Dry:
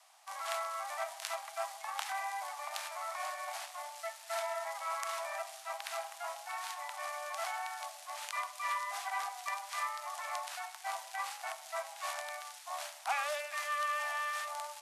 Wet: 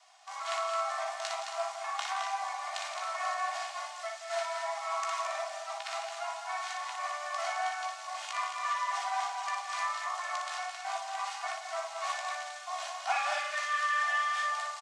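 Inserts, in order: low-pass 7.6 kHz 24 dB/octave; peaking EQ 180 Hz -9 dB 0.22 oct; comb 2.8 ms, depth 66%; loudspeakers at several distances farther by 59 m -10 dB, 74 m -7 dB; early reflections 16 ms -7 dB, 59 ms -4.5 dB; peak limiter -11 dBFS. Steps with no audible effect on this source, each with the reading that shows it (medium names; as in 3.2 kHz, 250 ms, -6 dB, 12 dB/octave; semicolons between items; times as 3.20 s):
peaking EQ 180 Hz: input has nothing below 540 Hz; peak limiter -11 dBFS: peak at its input -17.5 dBFS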